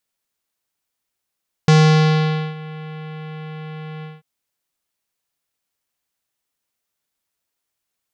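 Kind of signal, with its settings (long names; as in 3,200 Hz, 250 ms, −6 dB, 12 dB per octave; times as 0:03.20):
subtractive voice square D#3 24 dB per octave, low-pass 3,200 Hz, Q 1.2, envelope 1 octave, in 0.94 s, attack 2.2 ms, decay 0.86 s, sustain −22 dB, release 0.19 s, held 2.35 s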